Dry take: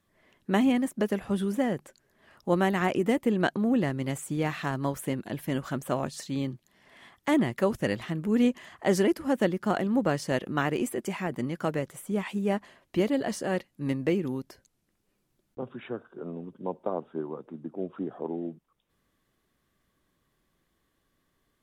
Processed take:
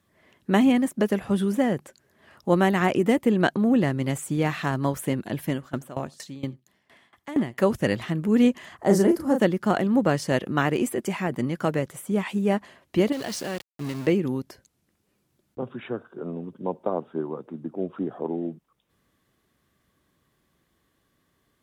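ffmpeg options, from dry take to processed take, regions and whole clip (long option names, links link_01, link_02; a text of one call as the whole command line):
ffmpeg -i in.wav -filter_complex "[0:a]asettb=1/sr,asplit=3[link_01][link_02][link_03];[link_01]atrim=end=5.504[link_04];[link_02]atrim=start=5.5:end=7.58,asetpts=PTS-STARTPTS,afade=type=in:duration=0.004:curve=qsin,afade=type=out:start_time=2.076:duration=0.004:curve=qsin,aecho=1:1:89:0.0841,atrim=end_sample=91728,aeval=exprs='val(0)*pow(10,-20*if(lt(mod(4.3*n/s,1),2*abs(4.3)/1000),1-mod(4.3*n/s,1)/(2*abs(4.3)/1000),(mod(4.3*n/s,1)-2*abs(4.3)/1000)/(1-2*abs(4.3)/1000))/20)':channel_layout=same[link_05];[link_03]atrim=start=7.576[link_06];[link_04][link_05]acrossfade=duration=0.004:curve1=hsin:curve2=qsin[link_07];[link_07][link_06]acrossfade=duration=0.004:curve1=qsin:curve2=hsin,asettb=1/sr,asplit=3[link_08][link_09][link_10];[link_08]atrim=end=8.774[link_11];[link_09]atrim=start=8.77:end=9.4,asetpts=PTS-STARTPTS,afade=type=in:duration=0.004:curve=qsin,afade=type=out:start_time=0.626:duration=0.004:curve=qsin,equalizer=frequency=2700:width_type=o:width=1.4:gain=-12,asplit=2[link_12][link_13];[link_13]adelay=35,volume=-5.5dB[link_14];[link_12][link_14]amix=inputs=2:normalize=0,atrim=end_sample=27783[link_15];[link_10]atrim=start=9.396[link_16];[link_11][link_15]acrossfade=duration=0.004:curve1=hsin:curve2=qsin[link_17];[link_17][link_16]acrossfade=duration=0.004:curve1=qsin:curve2=hsin,asettb=1/sr,asplit=3[link_18][link_19][link_20];[link_18]atrim=end=13.124[link_21];[link_19]atrim=start=13.12:end=14.07,asetpts=PTS-STARTPTS,afade=type=in:duration=0.004:curve=qsin,afade=type=out:start_time=0.946:duration=0.004:curve=qsin,equalizer=frequency=4300:width_type=o:width=1.4:gain=11,acompressor=threshold=-32dB:ratio=4:attack=3.2:release=140:knee=1:detection=peak,aeval=exprs='val(0)*gte(abs(val(0)),0.0112)':channel_layout=same[link_22];[link_20]atrim=start=14.066[link_23];[link_21][link_22]acrossfade=duration=0.004:curve1=hsin:curve2=qsin[link_24];[link_24][link_23]acrossfade=duration=0.004:curve1=qsin:curve2=hsin,highpass=68,lowshelf=frequency=88:gain=5.5,volume=4dB" out.wav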